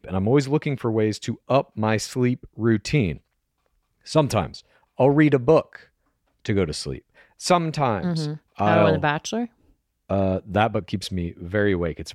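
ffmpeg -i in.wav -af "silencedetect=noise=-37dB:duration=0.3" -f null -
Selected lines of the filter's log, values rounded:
silence_start: 3.17
silence_end: 4.07 | silence_duration: 0.89
silence_start: 4.60
silence_end: 4.99 | silence_duration: 0.39
silence_start: 5.76
silence_end: 6.45 | silence_duration: 0.69
silence_start: 6.99
silence_end: 7.41 | silence_duration: 0.42
silence_start: 9.46
silence_end: 10.10 | silence_duration: 0.64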